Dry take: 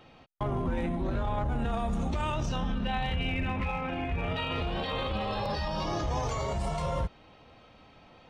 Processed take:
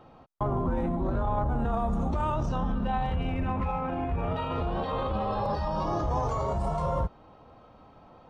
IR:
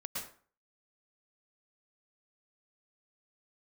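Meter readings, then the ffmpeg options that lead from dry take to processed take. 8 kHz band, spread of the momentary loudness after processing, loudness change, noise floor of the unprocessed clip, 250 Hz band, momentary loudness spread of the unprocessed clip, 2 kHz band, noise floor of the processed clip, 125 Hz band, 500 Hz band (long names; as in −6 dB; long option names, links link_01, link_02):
can't be measured, 2 LU, +2.0 dB, −56 dBFS, +2.0 dB, 2 LU, −6.0 dB, −55 dBFS, +2.0 dB, +3.0 dB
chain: -af "highshelf=frequency=1600:width_type=q:width=1.5:gain=-9.5,volume=2dB"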